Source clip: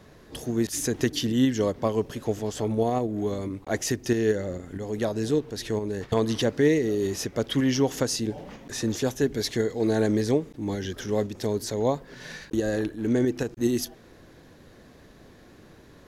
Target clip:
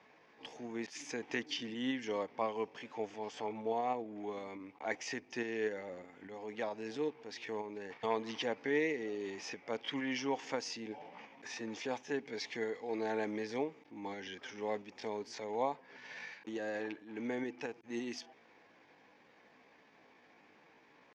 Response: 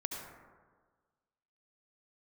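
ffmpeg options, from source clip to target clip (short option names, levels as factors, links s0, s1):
-af "aeval=exprs='val(0)+0.00141*(sin(2*PI*50*n/s)+sin(2*PI*2*50*n/s)/2+sin(2*PI*3*50*n/s)/3+sin(2*PI*4*50*n/s)/4+sin(2*PI*5*50*n/s)/5)':c=same,atempo=0.76,highpass=370,equalizer=f=370:t=q:w=4:g=-7,equalizer=f=590:t=q:w=4:g=-5,equalizer=f=860:t=q:w=4:g=7,equalizer=f=1400:t=q:w=4:g=-3,equalizer=f=2300:t=q:w=4:g=9,equalizer=f=4000:t=q:w=4:g=-8,lowpass=f=5100:w=0.5412,lowpass=f=5100:w=1.3066,volume=0.422"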